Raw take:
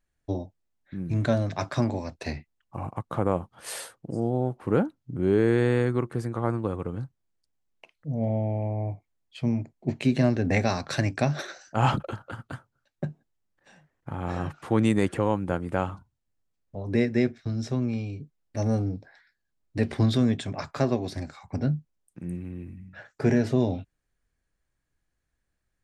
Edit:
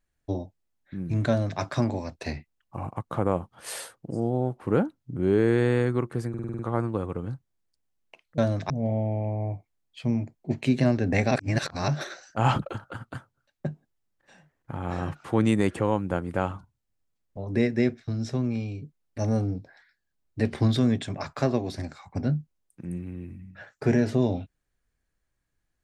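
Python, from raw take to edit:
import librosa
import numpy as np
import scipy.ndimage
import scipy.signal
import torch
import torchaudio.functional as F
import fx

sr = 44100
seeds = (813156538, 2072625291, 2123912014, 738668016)

y = fx.edit(x, sr, fx.duplicate(start_s=1.28, length_s=0.32, to_s=8.08),
    fx.stutter(start_s=6.29, slice_s=0.05, count=7),
    fx.reverse_span(start_s=10.69, length_s=0.57), tone=tone)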